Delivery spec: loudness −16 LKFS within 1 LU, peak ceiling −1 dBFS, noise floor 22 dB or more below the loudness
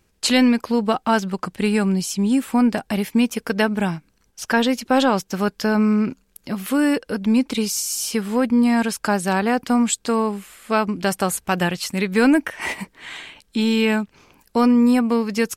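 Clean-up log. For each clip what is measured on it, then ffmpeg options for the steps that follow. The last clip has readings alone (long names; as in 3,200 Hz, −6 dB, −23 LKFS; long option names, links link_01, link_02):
integrated loudness −20.0 LKFS; sample peak −5.5 dBFS; target loudness −16.0 LKFS
→ -af "volume=4dB"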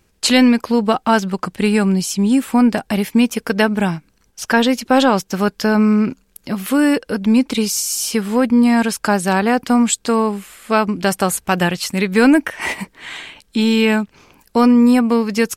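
integrated loudness −16.0 LKFS; sample peak −1.5 dBFS; background noise floor −59 dBFS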